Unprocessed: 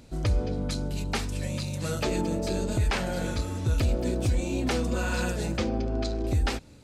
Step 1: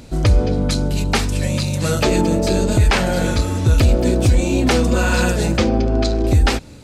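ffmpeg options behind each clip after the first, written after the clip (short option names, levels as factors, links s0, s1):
-af "acontrast=86,volume=1.68"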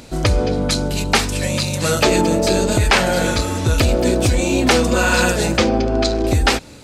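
-af "lowshelf=f=270:g=-9,volume=1.68"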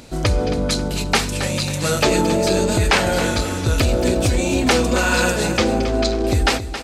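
-af "aecho=1:1:271|542|813|1084:0.266|0.101|0.0384|0.0146,volume=0.794"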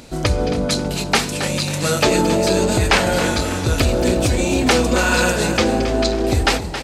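-filter_complex "[0:a]bandreject=f=50:t=h:w=6,bandreject=f=100:t=h:w=6,asplit=7[s0][s1][s2][s3][s4][s5][s6];[s1]adelay=298,afreqshift=96,volume=0.141[s7];[s2]adelay=596,afreqshift=192,volume=0.0851[s8];[s3]adelay=894,afreqshift=288,volume=0.0507[s9];[s4]adelay=1192,afreqshift=384,volume=0.0305[s10];[s5]adelay=1490,afreqshift=480,volume=0.0184[s11];[s6]adelay=1788,afreqshift=576,volume=0.011[s12];[s0][s7][s8][s9][s10][s11][s12]amix=inputs=7:normalize=0,volume=1.12"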